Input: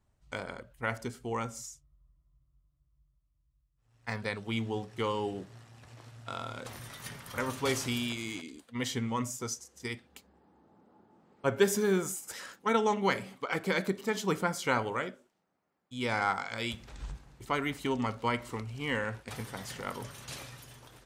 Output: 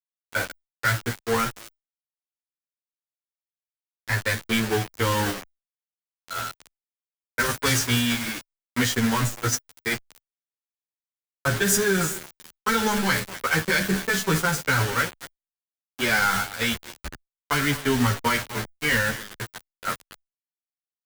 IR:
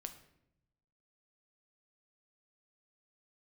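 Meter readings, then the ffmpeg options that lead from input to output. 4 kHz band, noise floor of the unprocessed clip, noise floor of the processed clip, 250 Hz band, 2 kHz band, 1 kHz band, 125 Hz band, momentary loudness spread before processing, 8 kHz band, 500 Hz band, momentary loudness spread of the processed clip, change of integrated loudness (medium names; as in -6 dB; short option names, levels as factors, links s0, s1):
+11.0 dB, -75 dBFS, under -85 dBFS, +7.5 dB, +12.0 dB, +6.5 dB, +10.5 dB, 15 LU, +12.0 dB, +3.5 dB, 13 LU, +9.5 dB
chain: -filter_complex "[0:a]aeval=exprs='val(0)+0.5*0.0376*sgn(val(0))':c=same,agate=range=0.0112:threshold=0.0447:ratio=16:detection=peak,acompressor=threshold=0.00501:ratio=2,equalizer=f=1600:t=o:w=0.51:g=12,asplit=2[s0][s1];[1:a]atrim=start_sample=2205[s2];[s1][s2]afir=irnorm=-1:irlink=0,volume=0.531[s3];[s0][s3]amix=inputs=2:normalize=0,acrossover=split=160|3000[s4][s5][s6];[s5]acompressor=threshold=0.00562:ratio=3[s7];[s4][s7][s6]amix=inputs=3:normalize=0,aecho=1:1:238:0.0944,acrusher=bits=8:mix=0:aa=0.000001,asoftclip=type=hard:threshold=0.0237,alimiter=level_in=59.6:limit=0.891:release=50:level=0:latency=1,asplit=2[s8][s9];[s9]adelay=11.4,afreqshift=-1.3[s10];[s8][s10]amix=inputs=2:normalize=1,volume=0.355"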